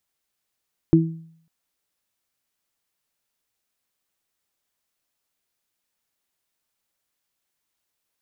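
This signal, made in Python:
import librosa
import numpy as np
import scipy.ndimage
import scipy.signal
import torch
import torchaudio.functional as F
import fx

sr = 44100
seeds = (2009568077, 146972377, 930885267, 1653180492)

y = fx.additive(sr, length_s=0.55, hz=163.0, level_db=-12.5, upper_db=(3.5,), decay_s=0.63, upper_decays_s=(0.33,))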